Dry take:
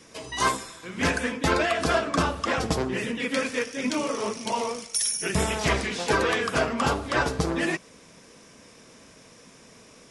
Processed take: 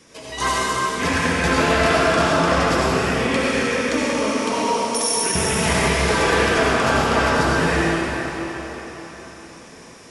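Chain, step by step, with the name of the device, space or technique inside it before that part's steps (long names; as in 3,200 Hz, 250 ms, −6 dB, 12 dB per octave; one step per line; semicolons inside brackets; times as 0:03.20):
cathedral (convolution reverb RT60 4.5 s, pre-delay 61 ms, DRR −7 dB)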